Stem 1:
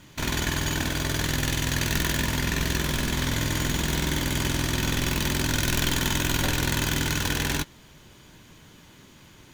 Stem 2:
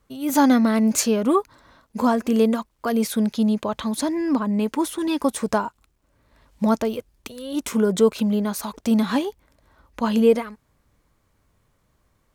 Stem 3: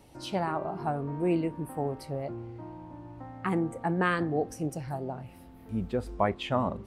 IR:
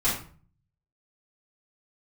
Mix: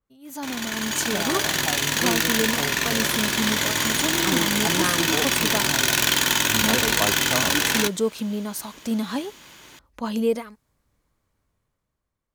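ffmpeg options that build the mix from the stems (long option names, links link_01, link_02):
-filter_complex "[0:a]highpass=frequency=680:poles=1,adelay=250,volume=-4dB[link_01];[1:a]adynamicequalizer=threshold=0.00708:dfrequency=3500:dqfactor=0.7:tfrequency=3500:tqfactor=0.7:attack=5:release=100:ratio=0.375:range=3:mode=boostabove:tftype=highshelf,volume=-18dB[link_02];[2:a]adelay=800,volume=-11.5dB[link_03];[link_01][link_02][link_03]amix=inputs=3:normalize=0,dynaudnorm=framelen=150:gausssize=13:maxgain=12dB"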